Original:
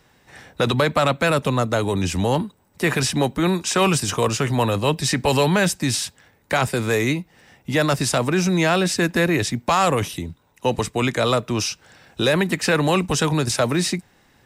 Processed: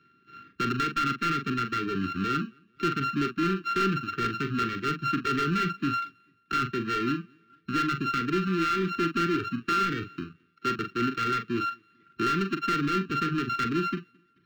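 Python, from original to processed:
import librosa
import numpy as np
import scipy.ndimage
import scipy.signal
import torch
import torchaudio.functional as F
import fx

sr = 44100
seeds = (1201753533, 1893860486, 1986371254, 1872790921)

p1 = np.r_[np.sort(x[:len(x) // 32 * 32].reshape(-1, 32), axis=1).ravel(), x[len(x) // 32 * 32:]]
p2 = p1 + fx.echo_feedback(p1, sr, ms=218, feedback_pct=37, wet_db=-22.0, dry=0)
p3 = fx.dereverb_blind(p2, sr, rt60_s=0.8)
p4 = scipy.signal.sosfilt(scipy.signal.butter(2, 210.0, 'highpass', fs=sr, output='sos'), p3)
p5 = fx.air_absorb(p4, sr, metres=270.0)
p6 = fx.doubler(p5, sr, ms=42.0, db=-9.5)
p7 = 10.0 ** (-17.5 / 20.0) * np.tanh(p6 / 10.0 ** (-17.5 / 20.0))
p8 = scipy.signal.sosfilt(scipy.signal.ellip(3, 1.0, 50, [380.0, 1300.0], 'bandstop', fs=sr, output='sos'), p7)
y = np.interp(np.arange(len(p8)), np.arange(len(p8))[::2], p8[::2])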